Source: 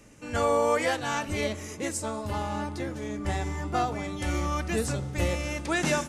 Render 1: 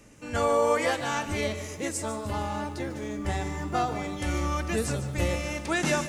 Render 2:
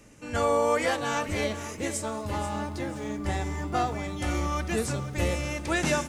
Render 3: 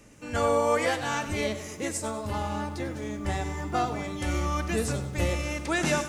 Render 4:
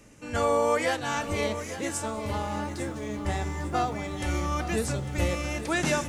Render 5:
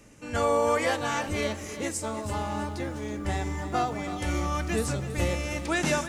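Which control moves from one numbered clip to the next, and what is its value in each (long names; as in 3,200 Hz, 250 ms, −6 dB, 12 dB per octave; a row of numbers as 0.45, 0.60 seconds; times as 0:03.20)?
feedback echo at a low word length, delay time: 148, 485, 98, 850, 326 milliseconds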